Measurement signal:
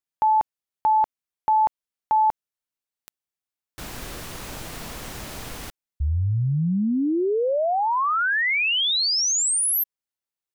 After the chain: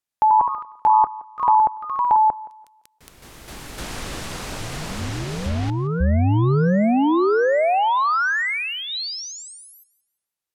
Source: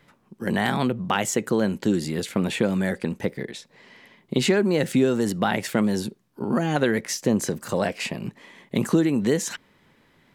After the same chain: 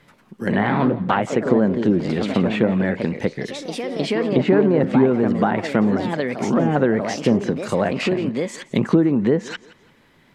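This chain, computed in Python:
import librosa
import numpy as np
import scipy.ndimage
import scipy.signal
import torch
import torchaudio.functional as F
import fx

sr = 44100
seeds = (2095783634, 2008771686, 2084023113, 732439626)

y = fx.echo_pitch(x, sr, ms=111, semitones=2, count=3, db_per_echo=-6.0)
y = fx.env_lowpass_down(y, sr, base_hz=1300.0, full_db=-17.0)
y = fx.echo_thinned(y, sr, ms=171, feedback_pct=29, hz=210.0, wet_db=-19.0)
y = y * librosa.db_to_amplitude(4.0)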